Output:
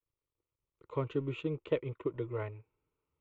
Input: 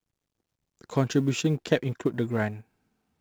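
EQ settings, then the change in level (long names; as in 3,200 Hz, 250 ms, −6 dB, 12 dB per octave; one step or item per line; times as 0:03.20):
low-pass filter 2,200 Hz 12 dB per octave
phaser with its sweep stopped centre 1,100 Hz, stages 8
−5.5 dB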